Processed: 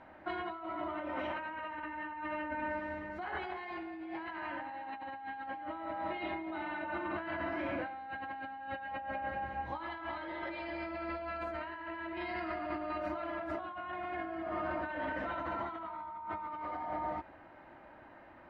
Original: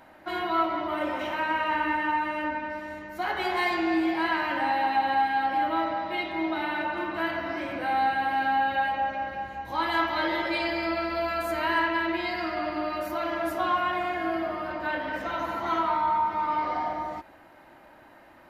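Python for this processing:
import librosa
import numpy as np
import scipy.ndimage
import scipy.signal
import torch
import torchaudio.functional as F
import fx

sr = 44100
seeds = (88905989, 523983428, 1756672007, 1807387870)

y = fx.over_compress(x, sr, threshold_db=-33.0, ratio=-1.0)
y = scipy.signal.sosfilt(scipy.signal.butter(2, 2500.0, 'lowpass', fs=sr, output='sos'), y)
y = fx.peak_eq(y, sr, hz=81.0, db=4.0, octaves=0.77)
y = F.gain(torch.from_numpy(y), -7.0).numpy()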